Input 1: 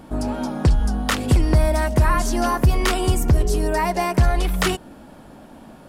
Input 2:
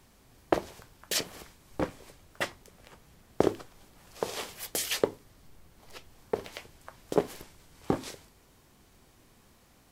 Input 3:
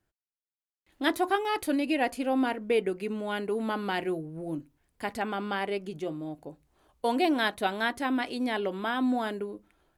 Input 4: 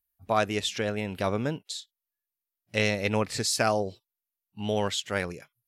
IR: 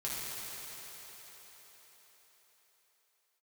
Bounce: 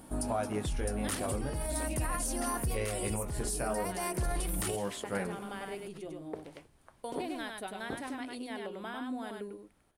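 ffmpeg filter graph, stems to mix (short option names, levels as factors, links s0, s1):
-filter_complex "[0:a]highshelf=f=6900:g=10,volume=0.316[s0];[1:a]highshelf=f=3900:g=-11.5,volume=0.335[s1];[2:a]acompressor=threshold=0.0316:ratio=3,volume=0.376,asplit=2[s2][s3];[s3]volume=0.668[s4];[3:a]equalizer=f=4600:w=0.53:g=-13.5,bandreject=f=78.45:t=h:w=4,bandreject=f=156.9:t=h:w=4,bandreject=f=235.35:t=h:w=4,bandreject=f=313.8:t=h:w=4,bandreject=f=392.25:t=h:w=4,bandreject=f=470.7:t=h:w=4,bandreject=f=549.15:t=h:w=4,bandreject=f=627.6:t=h:w=4,bandreject=f=706.05:t=h:w=4,bandreject=f=784.5:t=h:w=4,bandreject=f=862.95:t=h:w=4,bandreject=f=941.4:t=h:w=4,bandreject=f=1019.85:t=h:w=4,bandreject=f=1098.3:t=h:w=4,bandreject=f=1176.75:t=h:w=4,bandreject=f=1255.2:t=h:w=4,bandreject=f=1333.65:t=h:w=4,bandreject=f=1412.1:t=h:w=4,bandreject=f=1490.55:t=h:w=4,bandreject=f=1569:t=h:w=4,bandreject=f=1647.45:t=h:w=4,bandreject=f=1725.9:t=h:w=4,bandreject=f=1804.35:t=h:w=4,bandreject=f=1882.8:t=h:w=4,bandreject=f=1961.25:t=h:w=4,bandreject=f=2039.7:t=h:w=4,bandreject=f=2118.15:t=h:w=4,bandreject=f=2196.6:t=h:w=4,bandreject=f=2275.05:t=h:w=4,bandreject=f=2353.5:t=h:w=4,bandreject=f=2431.95:t=h:w=4,bandreject=f=2510.4:t=h:w=4,bandreject=f=2588.85:t=h:w=4,bandreject=f=2667.3:t=h:w=4,flanger=delay=15.5:depth=7.7:speed=0.4,volume=1.19[s5];[s0][s1][s2]amix=inputs=3:normalize=0,alimiter=level_in=1.12:limit=0.0631:level=0:latency=1:release=21,volume=0.891,volume=1[s6];[s4]aecho=0:1:99:1[s7];[s5][s6][s7]amix=inputs=3:normalize=0,equalizer=f=9400:t=o:w=0.3:g=14,alimiter=limit=0.0708:level=0:latency=1:release=486"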